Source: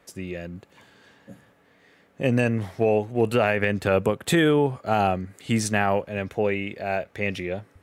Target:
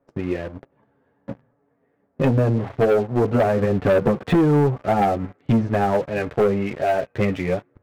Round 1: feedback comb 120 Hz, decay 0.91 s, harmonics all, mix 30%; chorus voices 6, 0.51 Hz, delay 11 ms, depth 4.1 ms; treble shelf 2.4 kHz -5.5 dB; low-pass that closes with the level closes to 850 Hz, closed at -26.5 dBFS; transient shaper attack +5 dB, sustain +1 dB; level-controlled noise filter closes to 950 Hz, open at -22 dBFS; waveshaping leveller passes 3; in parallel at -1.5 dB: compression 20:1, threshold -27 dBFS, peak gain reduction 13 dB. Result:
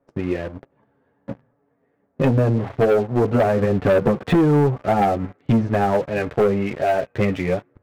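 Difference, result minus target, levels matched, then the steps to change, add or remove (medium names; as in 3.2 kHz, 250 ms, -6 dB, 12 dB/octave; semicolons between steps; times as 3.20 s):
compression: peak gain reduction -5.5 dB
change: compression 20:1, threshold -33 dBFS, peak gain reduction 18.5 dB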